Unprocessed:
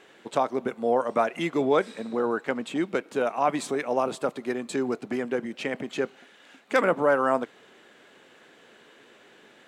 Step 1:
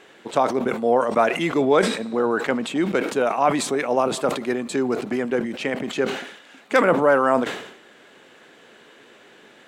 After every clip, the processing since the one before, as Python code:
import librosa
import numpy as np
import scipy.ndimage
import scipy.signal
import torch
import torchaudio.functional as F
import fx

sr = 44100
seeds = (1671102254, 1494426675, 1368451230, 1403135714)

y = fx.sustainer(x, sr, db_per_s=75.0)
y = y * librosa.db_to_amplitude(4.5)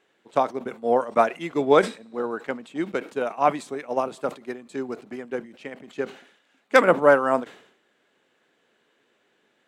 y = fx.upward_expand(x, sr, threshold_db=-27.0, expansion=2.5)
y = y * librosa.db_to_amplitude(3.0)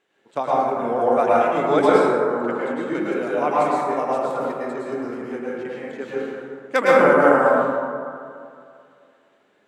y = fx.rev_plate(x, sr, seeds[0], rt60_s=2.3, hf_ratio=0.3, predelay_ms=95, drr_db=-7.5)
y = y * librosa.db_to_amplitude(-4.5)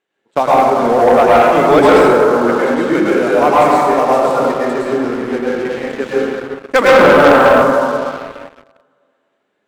y = fx.leveller(x, sr, passes=3)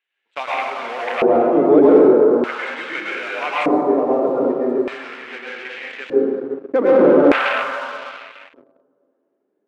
y = fx.filter_lfo_bandpass(x, sr, shape='square', hz=0.41, low_hz=340.0, high_hz=2500.0, q=2.2)
y = y * librosa.db_to_amplitude(2.5)